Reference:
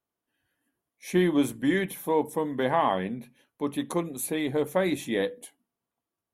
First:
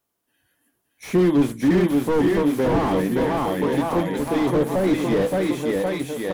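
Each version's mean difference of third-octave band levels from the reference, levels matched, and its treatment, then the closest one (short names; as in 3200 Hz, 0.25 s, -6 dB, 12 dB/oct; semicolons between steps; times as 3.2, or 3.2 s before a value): 9.0 dB: high shelf 5000 Hz +6.5 dB; bouncing-ball echo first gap 0.57 s, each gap 0.9×, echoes 5; slew limiter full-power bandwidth 30 Hz; gain +7.5 dB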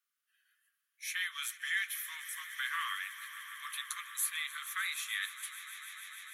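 23.0 dB: steep high-pass 1200 Hz 96 dB/oct; in parallel at -1 dB: compressor, threshold -45 dBFS, peak gain reduction 15.5 dB; on the sum: swelling echo 0.149 s, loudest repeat 5, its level -17 dB; gain -2 dB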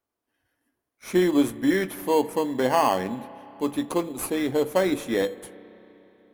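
6.0 dB: bell 160 Hz -8.5 dB 0.56 oct; in parallel at -5 dB: sample-and-hold 12×; on the sum: spring tank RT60 3.7 s, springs 31/58 ms, chirp 55 ms, DRR 17 dB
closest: third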